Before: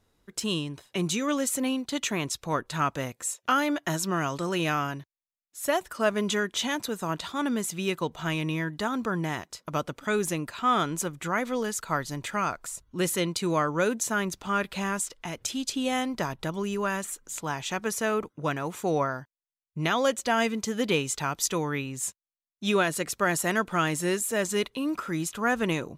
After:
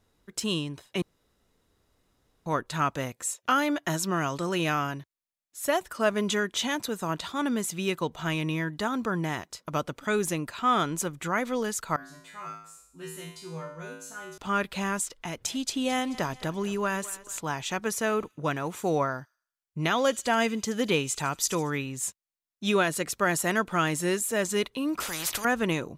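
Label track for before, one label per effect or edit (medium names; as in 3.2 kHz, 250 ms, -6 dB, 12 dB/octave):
1.020000	2.460000	room tone
11.960000	14.380000	feedback comb 54 Hz, decay 0.62 s, harmonics odd, mix 100%
15.210000	17.370000	thinning echo 218 ms, feedback 52%, level -16.5 dB
18.000000	21.950000	feedback echo behind a high-pass 76 ms, feedback 41%, high-pass 4.1 kHz, level -14 dB
25.000000	25.450000	spectrum-flattening compressor 4:1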